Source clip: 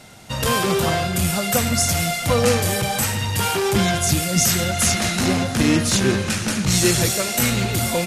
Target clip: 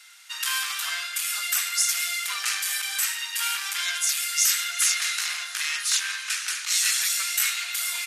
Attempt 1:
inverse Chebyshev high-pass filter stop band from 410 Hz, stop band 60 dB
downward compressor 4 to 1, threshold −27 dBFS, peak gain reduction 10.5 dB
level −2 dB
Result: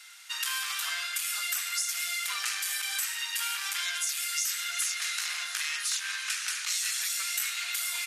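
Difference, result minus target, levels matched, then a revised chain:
downward compressor: peak gain reduction +10.5 dB
inverse Chebyshev high-pass filter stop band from 410 Hz, stop band 60 dB
level −2 dB

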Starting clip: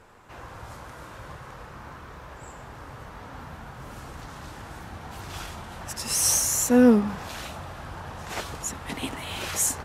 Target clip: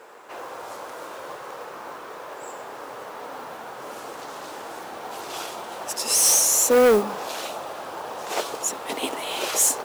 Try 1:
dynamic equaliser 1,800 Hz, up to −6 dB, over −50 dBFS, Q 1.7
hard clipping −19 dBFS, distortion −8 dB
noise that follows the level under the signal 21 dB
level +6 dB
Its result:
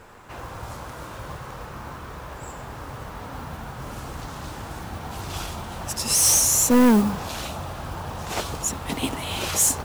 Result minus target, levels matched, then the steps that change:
500 Hz band −7.0 dB
add after dynamic equaliser: high-pass with resonance 440 Hz, resonance Q 1.6

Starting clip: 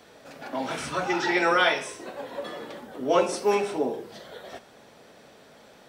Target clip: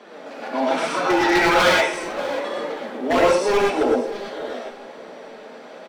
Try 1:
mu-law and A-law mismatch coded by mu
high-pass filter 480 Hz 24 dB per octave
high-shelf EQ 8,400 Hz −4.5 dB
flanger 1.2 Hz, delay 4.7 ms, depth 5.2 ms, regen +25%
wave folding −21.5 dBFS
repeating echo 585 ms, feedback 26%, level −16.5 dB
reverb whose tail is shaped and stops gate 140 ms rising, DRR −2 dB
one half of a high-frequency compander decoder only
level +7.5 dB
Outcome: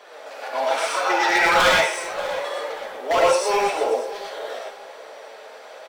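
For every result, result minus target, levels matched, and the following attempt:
250 Hz band −10.5 dB; 8,000 Hz band +4.0 dB
mu-law and A-law mismatch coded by mu
high-pass filter 240 Hz 24 dB per octave
high-shelf EQ 8,400 Hz −4.5 dB
flanger 1.2 Hz, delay 4.7 ms, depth 5.2 ms, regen +25%
wave folding −21.5 dBFS
repeating echo 585 ms, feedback 26%, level −16.5 dB
reverb whose tail is shaped and stops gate 140 ms rising, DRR −2 dB
one half of a high-frequency compander decoder only
level +7.5 dB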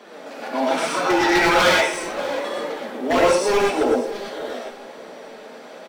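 8,000 Hz band +3.5 dB
mu-law and A-law mismatch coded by mu
high-pass filter 240 Hz 24 dB per octave
high-shelf EQ 8,400 Hz −16.5 dB
flanger 1.2 Hz, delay 4.7 ms, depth 5.2 ms, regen +25%
wave folding −21.5 dBFS
repeating echo 585 ms, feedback 26%, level −16.5 dB
reverb whose tail is shaped and stops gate 140 ms rising, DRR −2 dB
one half of a high-frequency compander decoder only
level +7.5 dB

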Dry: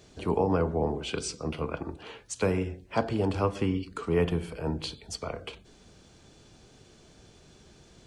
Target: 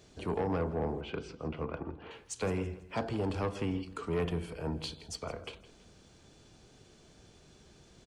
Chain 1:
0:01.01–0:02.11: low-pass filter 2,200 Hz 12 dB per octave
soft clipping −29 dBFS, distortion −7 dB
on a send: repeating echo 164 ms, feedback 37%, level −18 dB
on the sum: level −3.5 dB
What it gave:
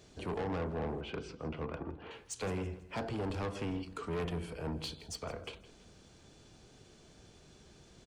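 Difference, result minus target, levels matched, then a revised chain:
soft clipping: distortion +6 dB
0:01.01–0:02.11: low-pass filter 2,200 Hz 12 dB per octave
soft clipping −22 dBFS, distortion −13 dB
on a send: repeating echo 164 ms, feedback 37%, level −18 dB
on the sum: level −3.5 dB

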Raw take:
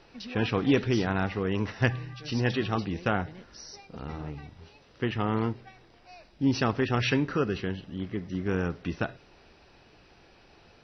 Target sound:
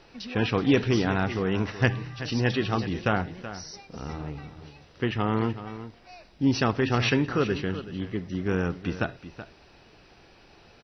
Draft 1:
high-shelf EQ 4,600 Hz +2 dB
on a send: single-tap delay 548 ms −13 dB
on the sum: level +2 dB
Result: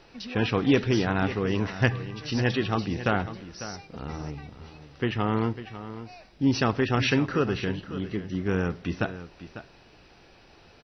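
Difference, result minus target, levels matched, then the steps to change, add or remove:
echo 171 ms late
change: single-tap delay 377 ms −13 dB

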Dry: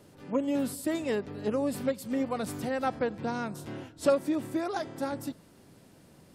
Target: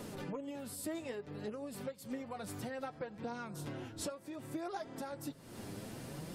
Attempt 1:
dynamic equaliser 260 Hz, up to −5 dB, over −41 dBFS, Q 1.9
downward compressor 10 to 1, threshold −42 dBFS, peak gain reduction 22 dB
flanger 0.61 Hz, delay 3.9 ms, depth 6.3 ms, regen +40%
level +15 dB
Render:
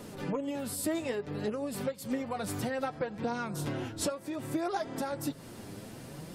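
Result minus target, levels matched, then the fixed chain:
downward compressor: peak gain reduction −8.5 dB
dynamic equaliser 260 Hz, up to −5 dB, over −41 dBFS, Q 1.9
downward compressor 10 to 1, threshold −51.5 dBFS, peak gain reduction 30.5 dB
flanger 0.61 Hz, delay 3.9 ms, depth 6.3 ms, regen +40%
level +15 dB

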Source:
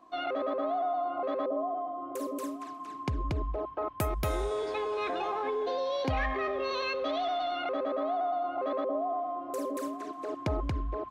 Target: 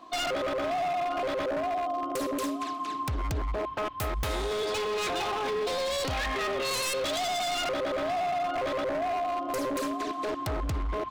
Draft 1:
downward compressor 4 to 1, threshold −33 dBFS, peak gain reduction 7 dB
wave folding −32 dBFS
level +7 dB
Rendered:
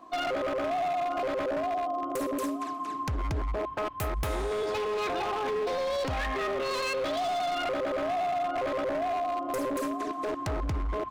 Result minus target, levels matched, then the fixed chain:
4,000 Hz band −5.0 dB
downward compressor 4 to 1, threshold −33 dBFS, peak gain reduction 7 dB
parametric band 3,700 Hz +9.5 dB 1.4 octaves
wave folding −32 dBFS
level +7 dB

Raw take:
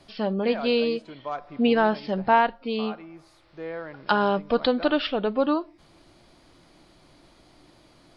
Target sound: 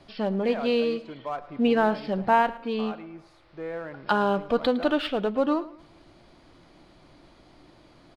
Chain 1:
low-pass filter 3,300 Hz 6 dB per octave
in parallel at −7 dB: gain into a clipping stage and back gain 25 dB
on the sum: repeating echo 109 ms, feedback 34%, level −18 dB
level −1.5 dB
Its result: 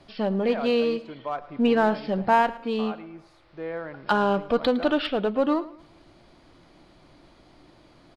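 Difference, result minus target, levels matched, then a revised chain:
gain into a clipping stage and back: distortion −5 dB
low-pass filter 3,300 Hz 6 dB per octave
in parallel at −7 dB: gain into a clipping stage and back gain 36.5 dB
on the sum: repeating echo 109 ms, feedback 34%, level −18 dB
level −1.5 dB

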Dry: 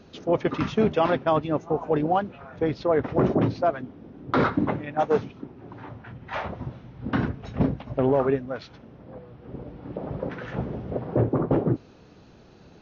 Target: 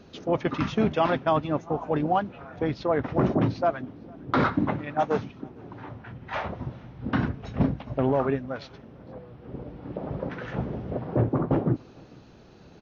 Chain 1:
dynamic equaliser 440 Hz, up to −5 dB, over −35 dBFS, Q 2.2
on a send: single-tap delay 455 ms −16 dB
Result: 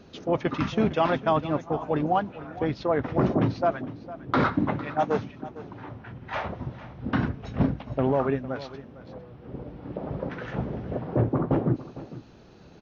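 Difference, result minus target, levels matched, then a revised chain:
echo-to-direct +11.5 dB
dynamic equaliser 440 Hz, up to −5 dB, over −35 dBFS, Q 2.2
on a send: single-tap delay 455 ms −27.5 dB

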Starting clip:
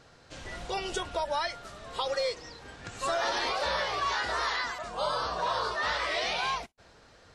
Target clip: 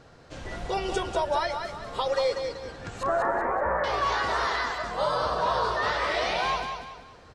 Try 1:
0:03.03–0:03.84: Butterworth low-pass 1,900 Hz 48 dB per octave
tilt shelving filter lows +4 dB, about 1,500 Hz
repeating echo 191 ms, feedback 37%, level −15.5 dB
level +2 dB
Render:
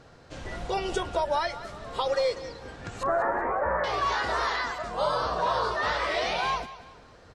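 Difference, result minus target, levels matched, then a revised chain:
echo-to-direct −9 dB
0:03.03–0:03.84: Butterworth low-pass 1,900 Hz 48 dB per octave
tilt shelving filter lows +4 dB, about 1,500 Hz
repeating echo 191 ms, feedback 37%, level −6.5 dB
level +2 dB

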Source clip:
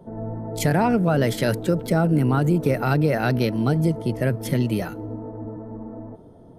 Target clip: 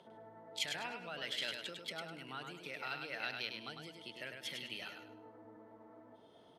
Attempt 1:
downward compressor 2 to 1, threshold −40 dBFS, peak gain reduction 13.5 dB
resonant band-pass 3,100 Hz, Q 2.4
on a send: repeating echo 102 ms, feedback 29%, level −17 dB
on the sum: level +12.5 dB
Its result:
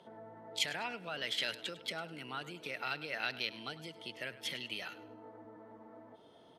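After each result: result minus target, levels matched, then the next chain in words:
echo-to-direct −11.5 dB; downward compressor: peak gain reduction −4.5 dB
downward compressor 2 to 1, threshold −40 dBFS, peak gain reduction 13.5 dB
resonant band-pass 3,100 Hz, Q 2.4
on a send: repeating echo 102 ms, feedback 29%, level −5.5 dB
on the sum: level +12.5 dB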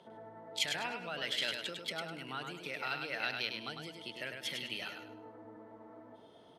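downward compressor: peak gain reduction −4.5 dB
downward compressor 2 to 1, threshold −49 dBFS, peak gain reduction 18 dB
resonant band-pass 3,100 Hz, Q 2.4
on a send: repeating echo 102 ms, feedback 29%, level −5.5 dB
on the sum: level +12.5 dB

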